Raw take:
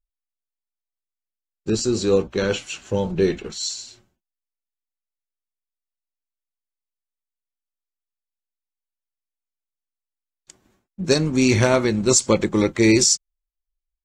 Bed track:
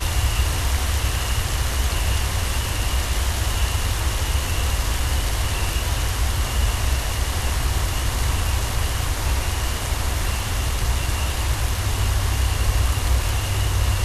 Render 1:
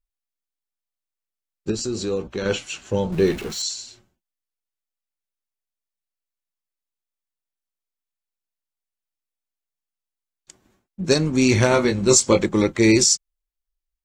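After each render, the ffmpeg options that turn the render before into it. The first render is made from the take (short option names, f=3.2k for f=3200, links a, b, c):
-filter_complex "[0:a]asettb=1/sr,asplit=3[a][b][c];[a]atrim=end=1.714[d];[b]atrim=start=1.71:end=2.46,asetpts=PTS-STARTPTS,afade=t=in:d=0.004:c=qsin,afade=t=out:st=0.746:d=0.004:c=qsin,acompressor=threshold=-26dB:ratio=2:attack=3.2:release=140:knee=1:detection=peak[e];[c]atrim=start=2.456[f];[d][e]acrossfade=d=0.004:c1=hsin:c2=qsin[g];[g][f]acrossfade=d=0.004:c1=qsin:c2=hsin,asettb=1/sr,asplit=3[h][i][j];[h]atrim=end=3.124[k];[i]atrim=start=3.12:end=3.62,asetpts=PTS-STARTPTS,afade=t=in:d=0.004:c=qsin,afade=t=out:st=0.496:d=0.004:c=qsin,aeval=exprs='val(0)+0.5*0.0237*sgn(val(0))':c=same[l];[j]atrim=start=3.616[m];[k][l]acrossfade=d=0.004:c1=hsin:c2=qsin[n];[n][m]acrossfade=d=0.004:c1=qsin:c2=hsin,asettb=1/sr,asplit=3[o][p][q];[o]atrim=end=11.694[r];[p]atrim=start=11.69:end=12.46,asetpts=PTS-STARTPTS,afade=t=in:d=0.004:c=qsin,afade=t=out:st=0.766:d=0.004:c=qsin,asplit=2[s][t];[t]adelay=21,volume=-5dB[u];[s][u]amix=inputs=2:normalize=0,atrim=end_sample=33957[v];[q]atrim=start=12.456[w];[r][v]acrossfade=d=0.004:c1=hsin:c2=qsin[x];[x][w]acrossfade=d=0.004:c1=qsin:c2=hsin"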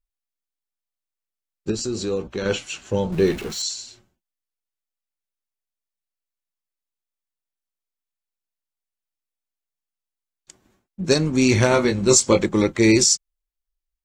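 -af anull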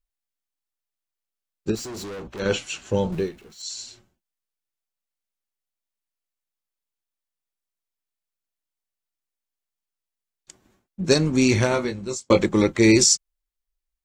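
-filter_complex "[0:a]asettb=1/sr,asplit=3[a][b][c];[a]atrim=end=1.754[d];[b]atrim=start=1.75:end=2.4,asetpts=PTS-STARTPTS,afade=t=in:d=0.004:c=qsin,afade=t=out:st=0.646:d=0.004:c=qsin,volume=33dB,asoftclip=hard,volume=-33dB[e];[c]atrim=start=2.396[f];[d][e]acrossfade=d=0.004:c1=hsin:c2=qsin[g];[g][f]acrossfade=d=0.004:c1=qsin:c2=hsin,asplit=4[h][i][j][k];[h]atrim=end=3.31,asetpts=PTS-STARTPTS,afade=t=out:st=3.07:d=0.24:silence=0.125893[l];[i]atrim=start=3.31:end=3.58,asetpts=PTS-STARTPTS,volume=-18dB[m];[j]atrim=start=3.58:end=12.3,asetpts=PTS-STARTPTS,afade=t=in:d=0.24:silence=0.125893,afade=t=out:st=7.75:d=0.97[n];[k]atrim=start=12.3,asetpts=PTS-STARTPTS,afade=t=in:d=0.004:c=hsin[o];[l][m][n][o]concat=n=4:v=0:a=1"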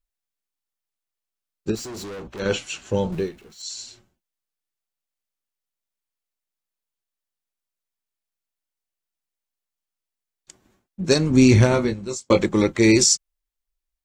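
-filter_complex "[0:a]asettb=1/sr,asplit=3[a][b][c];[a]atrim=end=11.304[d];[b]atrim=start=11.3:end=11.94,asetpts=PTS-STARTPTS,afade=t=in:d=0.004:c=qsin,afade=t=out:st=0.636:d=0.004:c=qsin,lowshelf=f=290:g=9.5[e];[c]atrim=start=11.936[f];[d][e]acrossfade=d=0.004:c1=hsin:c2=qsin[g];[g][f]acrossfade=d=0.004:c1=qsin:c2=hsin"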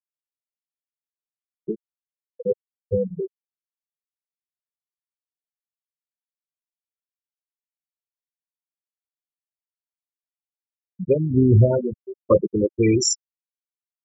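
-af "afftfilt=real='re*gte(hypot(re,im),0.398)':imag='im*gte(hypot(re,im),0.398)':win_size=1024:overlap=0.75,aecho=1:1:1.8:0.42"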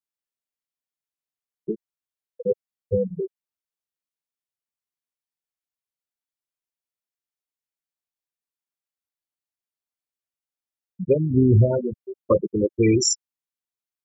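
-af "alimiter=limit=-8dB:level=0:latency=1:release=396"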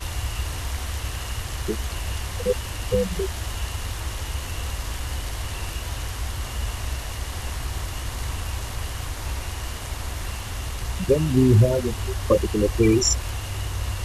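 -filter_complex "[1:a]volume=-7.5dB[a];[0:a][a]amix=inputs=2:normalize=0"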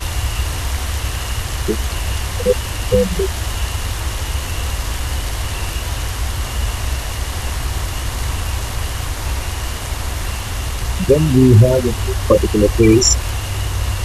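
-af "volume=8dB,alimiter=limit=-1dB:level=0:latency=1"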